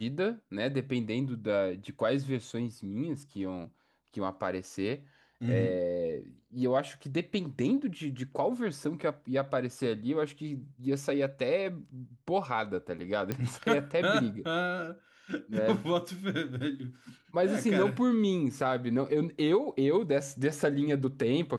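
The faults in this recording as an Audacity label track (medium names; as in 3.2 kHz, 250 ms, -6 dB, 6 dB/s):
13.320000	13.320000	pop -18 dBFS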